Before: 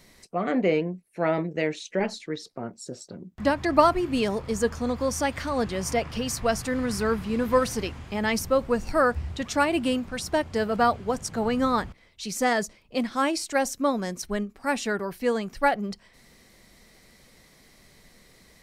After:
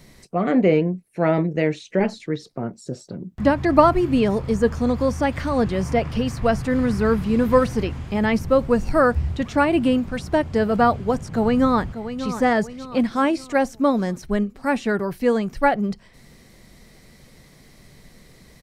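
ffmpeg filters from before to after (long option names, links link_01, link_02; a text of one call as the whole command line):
ffmpeg -i in.wav -filter_complex "[0:a]asplit=2[link_01][link_02];[link_02]afade=type=in:start_time=11.32:duration=0.01,afade=type=out:start_time=12.26:duration=0.01,aecho=0:1:590|1180|1770|2360|2950:0.281838|0.126827|0.0570723|0.0256825|0.0115571[link_03];[link_01][link_03]amix=inputs=2:normalize=0,equalizer=frequency=140:width_type=o:width=0.23:gain=6,acrossover=split=3100[link_04][link_05];[link_05]acompressor=threshold=-44dB:ratio=4:attack=1:release=60[link_06];[link_04][link_06]amix=inputs=2:normalize=0,lowshelf=frequency=430:gain=6.5,volume=2.5dB" out.wav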